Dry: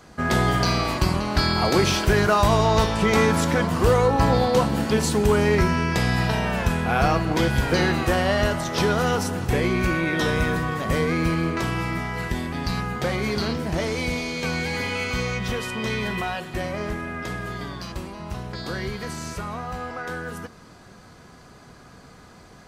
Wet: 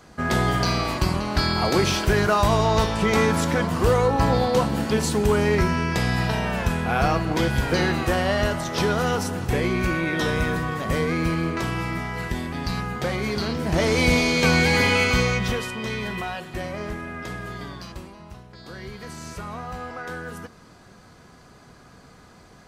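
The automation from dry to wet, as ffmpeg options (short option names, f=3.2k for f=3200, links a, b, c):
-af "volume=19dB,afade=t=in:st=13.52:d=0.62:silence=0.354813,afade=t=out:st=14.9:d=0.86:silence=0.298538,afade=t=out:st=17.71:d=0.77:silence=0.298538,afade=t=in:st=18.48:d=1.11:silence=0.281838"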